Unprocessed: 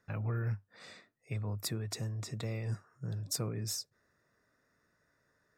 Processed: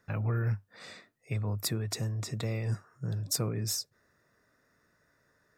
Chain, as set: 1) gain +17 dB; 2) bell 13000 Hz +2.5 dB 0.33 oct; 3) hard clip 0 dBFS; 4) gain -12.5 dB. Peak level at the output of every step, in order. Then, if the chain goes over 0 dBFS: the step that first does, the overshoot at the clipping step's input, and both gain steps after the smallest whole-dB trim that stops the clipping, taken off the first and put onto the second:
-4.5, -4.0, -4.0, -16.5 dBFS; no overload

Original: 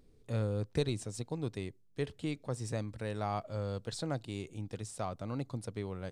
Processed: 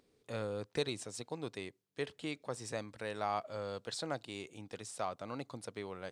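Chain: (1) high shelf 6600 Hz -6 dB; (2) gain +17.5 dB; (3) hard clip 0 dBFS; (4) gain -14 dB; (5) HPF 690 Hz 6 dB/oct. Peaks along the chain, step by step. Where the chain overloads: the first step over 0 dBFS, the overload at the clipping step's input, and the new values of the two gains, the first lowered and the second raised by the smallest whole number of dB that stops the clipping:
-19.5, -2.0, -2.0, -16.0, -20.0 dBFS; no overload

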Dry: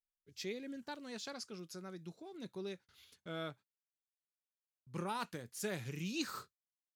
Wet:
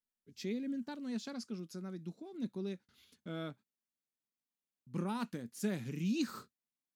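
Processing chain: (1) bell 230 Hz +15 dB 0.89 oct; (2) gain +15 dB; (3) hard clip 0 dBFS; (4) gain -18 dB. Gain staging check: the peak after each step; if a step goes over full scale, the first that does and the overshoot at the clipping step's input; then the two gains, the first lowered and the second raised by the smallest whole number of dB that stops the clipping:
-19.0, -4.0, -4.0, -22.0 dBFS; no overload

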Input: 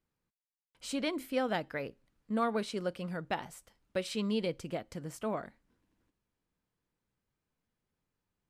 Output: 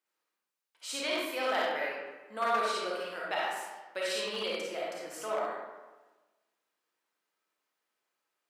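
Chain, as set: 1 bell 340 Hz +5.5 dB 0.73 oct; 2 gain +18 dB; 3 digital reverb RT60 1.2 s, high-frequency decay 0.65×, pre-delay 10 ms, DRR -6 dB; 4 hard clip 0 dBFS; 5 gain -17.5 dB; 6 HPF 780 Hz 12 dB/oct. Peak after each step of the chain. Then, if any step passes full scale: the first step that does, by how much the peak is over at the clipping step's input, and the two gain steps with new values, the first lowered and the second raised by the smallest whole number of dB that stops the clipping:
-18.5, -0.5, +7.5, 0.0, -17.5, -17.0 dBFS; step 3, 7.5 dB; step 2 +10 dB, step 5 -9.5 dB

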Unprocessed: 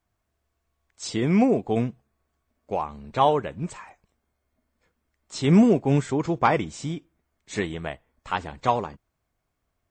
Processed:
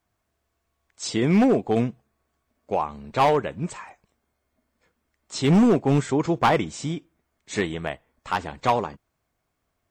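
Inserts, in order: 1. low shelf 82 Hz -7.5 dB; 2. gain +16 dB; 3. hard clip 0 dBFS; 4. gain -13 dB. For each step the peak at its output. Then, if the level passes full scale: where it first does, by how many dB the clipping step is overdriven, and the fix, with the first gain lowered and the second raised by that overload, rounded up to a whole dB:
-7.0, +9.0, 0.0, -13.0 dBFS; step 2, 9.0 dB; step 2 +7 dB, step 4 -4 dB

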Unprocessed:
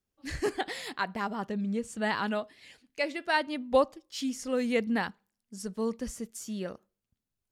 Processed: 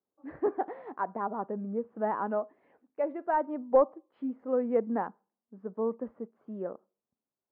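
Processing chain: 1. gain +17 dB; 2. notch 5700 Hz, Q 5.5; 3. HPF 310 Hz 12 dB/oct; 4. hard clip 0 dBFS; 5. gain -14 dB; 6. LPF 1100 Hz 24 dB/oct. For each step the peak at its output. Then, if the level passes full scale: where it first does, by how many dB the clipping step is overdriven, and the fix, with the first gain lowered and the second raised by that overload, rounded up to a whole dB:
+4.5, +4.5, +4.5, 0.0, -14.0, -13.0 dBFS; step 1, 4.5 dB; step 1 +12 dB, step 5 -9 dB

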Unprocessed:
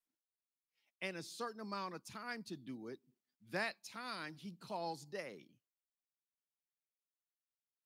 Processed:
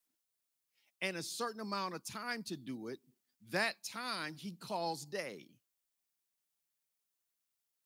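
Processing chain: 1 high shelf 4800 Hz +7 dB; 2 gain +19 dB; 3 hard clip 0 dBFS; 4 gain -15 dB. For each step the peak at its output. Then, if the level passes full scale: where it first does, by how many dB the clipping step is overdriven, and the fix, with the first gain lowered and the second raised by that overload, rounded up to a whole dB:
-22.5, -3.5, -3.5, -18.5 dBFS; no overload

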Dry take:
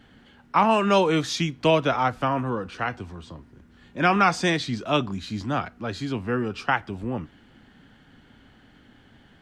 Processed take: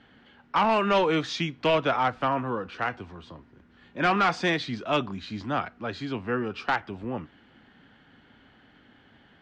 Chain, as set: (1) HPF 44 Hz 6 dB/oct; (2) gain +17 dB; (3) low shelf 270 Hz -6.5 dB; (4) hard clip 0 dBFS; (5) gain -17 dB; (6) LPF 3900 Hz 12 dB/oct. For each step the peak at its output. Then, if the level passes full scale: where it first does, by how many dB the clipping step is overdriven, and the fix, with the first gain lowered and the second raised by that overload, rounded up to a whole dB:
-8.0, +9.0, +9.0, 0.0, -17.0, -16.5 dBFS; step 2, 9.0 dB; step 2 +8 dB, step 5 -8 dB

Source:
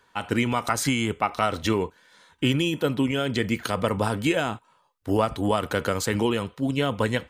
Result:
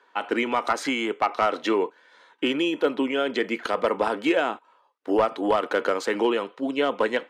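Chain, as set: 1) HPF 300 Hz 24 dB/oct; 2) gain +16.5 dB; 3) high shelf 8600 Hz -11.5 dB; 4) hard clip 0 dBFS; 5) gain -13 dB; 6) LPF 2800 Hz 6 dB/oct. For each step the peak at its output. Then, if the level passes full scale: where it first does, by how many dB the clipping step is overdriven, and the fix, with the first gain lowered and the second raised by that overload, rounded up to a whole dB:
-10.0, +6.5, +6.0, 0.0, -13.0, -13.0 dBFS; step 2, 6.0 dB; step 2 +10.5 dB, step 5 -7 dB

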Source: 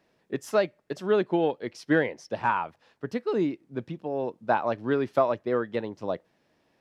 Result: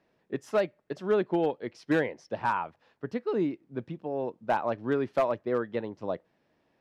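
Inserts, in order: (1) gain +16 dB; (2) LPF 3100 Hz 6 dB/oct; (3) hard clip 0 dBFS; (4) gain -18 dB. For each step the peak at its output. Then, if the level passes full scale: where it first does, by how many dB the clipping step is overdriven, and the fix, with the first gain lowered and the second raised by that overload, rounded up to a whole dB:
+6.0, +6.0, 0.0, -18.0 dBFS; step 1, 6.0 dB; step 1 +10 dB, step 4 -12 dB

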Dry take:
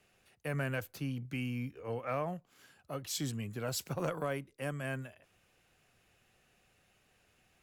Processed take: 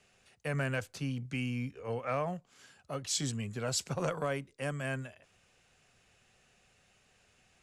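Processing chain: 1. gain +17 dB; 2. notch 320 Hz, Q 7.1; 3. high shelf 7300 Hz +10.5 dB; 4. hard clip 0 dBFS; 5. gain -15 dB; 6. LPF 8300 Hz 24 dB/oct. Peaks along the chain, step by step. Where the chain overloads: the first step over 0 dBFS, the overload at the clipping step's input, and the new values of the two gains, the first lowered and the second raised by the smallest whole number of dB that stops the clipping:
-5.5, -6.0, -2.5, -2.5, -17.5, -20.0 dBFS; no overload

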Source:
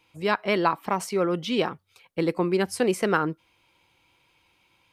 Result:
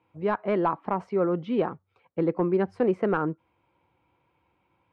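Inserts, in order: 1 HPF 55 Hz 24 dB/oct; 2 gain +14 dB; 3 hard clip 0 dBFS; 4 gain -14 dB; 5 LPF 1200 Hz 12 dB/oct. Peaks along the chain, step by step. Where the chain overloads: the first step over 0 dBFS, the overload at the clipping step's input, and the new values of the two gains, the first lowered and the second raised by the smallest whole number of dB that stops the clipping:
-7.5, +6.5, 0.0, -14.0, -13.5 dBFS; step 2, 6.5 dB; step 2 +7 dB, step 4 -7 dB

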